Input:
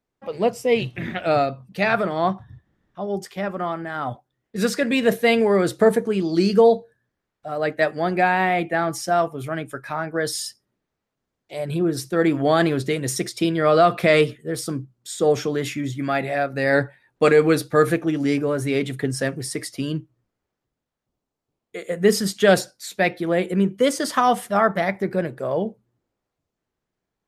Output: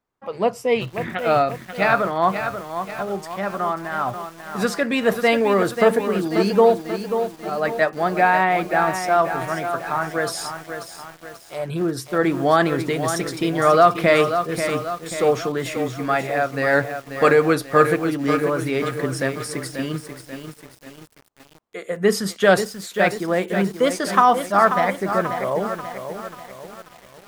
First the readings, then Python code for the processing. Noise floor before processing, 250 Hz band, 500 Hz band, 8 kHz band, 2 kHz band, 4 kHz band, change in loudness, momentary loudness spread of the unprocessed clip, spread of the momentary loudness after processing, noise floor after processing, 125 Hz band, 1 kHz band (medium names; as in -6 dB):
-83 dBFS, -1.0 dB, +0.5 dB, -1.0 dB, +2.5 dB, -0.5 dB, +1.0 dB, 12 LU, 15 LU, -48 dBFS, -1.0 dB, +4.0 dB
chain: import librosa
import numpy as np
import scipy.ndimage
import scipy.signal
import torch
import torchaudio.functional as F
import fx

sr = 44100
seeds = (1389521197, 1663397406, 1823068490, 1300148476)

y = fx.peak_eq(x, sr, hz=1100.0, db=8.0, octaves=1.2)
y = fx.echo_crushed(y, sr, ms=537, feedback_pct=55, bits=6, wet_db=-8.0)
y = y * 10.0 ** (-2.0 / 20.0)